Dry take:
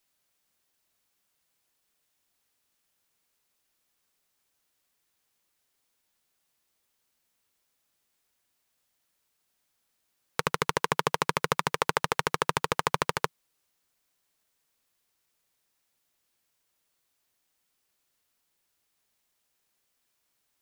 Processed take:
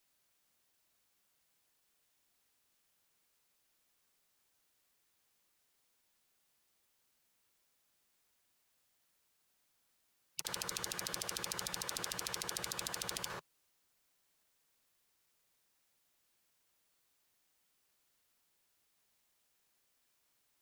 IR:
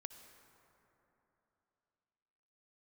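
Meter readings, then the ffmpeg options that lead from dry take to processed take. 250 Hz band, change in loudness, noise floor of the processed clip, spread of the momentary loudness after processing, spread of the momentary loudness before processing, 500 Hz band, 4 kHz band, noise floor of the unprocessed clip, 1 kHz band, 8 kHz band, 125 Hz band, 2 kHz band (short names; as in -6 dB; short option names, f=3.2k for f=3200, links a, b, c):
-15.0 dB, -11.0 dB, -78 dBFS, 5 LU, 5 LU, -17.5 dB, -6.0 dB, -77 dBFS, -19.0 dB, -1.0 dB, -17.0 dB, -14.5 dB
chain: -filter_complex "[1:a]atrim=start_sample=2205,atrim=end_sample=6615[a];[0:a][a]afir=irnorm=-1:irlink=0,afftfilt=real='re*lt(hypot(re,im),0.02)':imag='im*lt(hypot(re,im),0.02)':win_size=1024:overlap=0.75,volume=4.5dB"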